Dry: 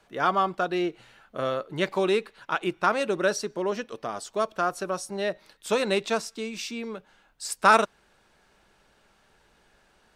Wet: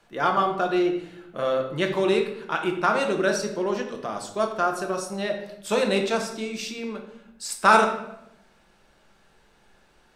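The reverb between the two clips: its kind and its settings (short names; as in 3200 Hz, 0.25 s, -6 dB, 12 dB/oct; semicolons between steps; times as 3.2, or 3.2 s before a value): shoebox room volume 260 m³, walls mixed, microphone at 0.81 m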